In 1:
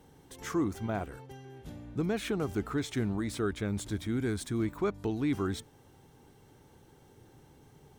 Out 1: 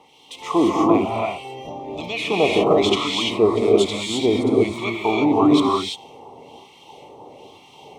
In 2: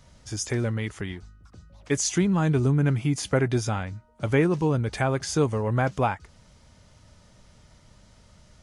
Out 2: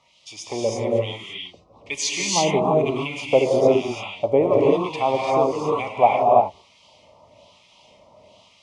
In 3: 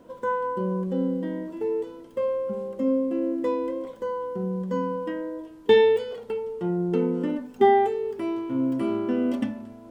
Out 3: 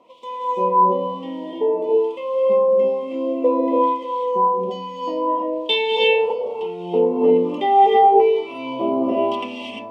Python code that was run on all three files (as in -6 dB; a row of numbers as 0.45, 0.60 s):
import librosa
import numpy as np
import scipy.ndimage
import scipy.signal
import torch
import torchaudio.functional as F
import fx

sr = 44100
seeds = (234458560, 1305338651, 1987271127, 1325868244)

y = scipy.signal.sosfilt(scipy.signal.cheby1(2, 1.0, [980.0, 2500.0], 'bandstop', fs=sr, output='sos'), x)
y = fx.wah_lfo(y, sr, hz=1.1, low_hz=580.0, high_hz=3200.0, q=2.4)
y = fx.rev_gated(y, sr, seeds[0], gate_ms=370, shape='rising', drr_db=-3.0)
y = librosa.util.normalize(y) * 10.0 ** (-3 / 20.0)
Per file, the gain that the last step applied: +24.0, +12.5, +14.5 dB